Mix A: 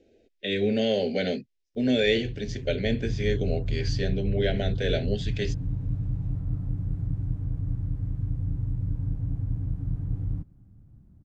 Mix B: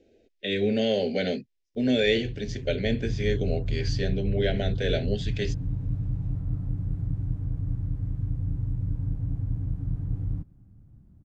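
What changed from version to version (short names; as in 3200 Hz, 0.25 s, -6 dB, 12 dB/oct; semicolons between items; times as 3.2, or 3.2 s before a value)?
none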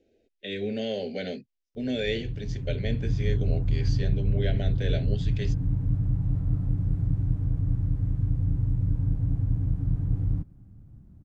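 speech -6.0 dB; background +3.5 dB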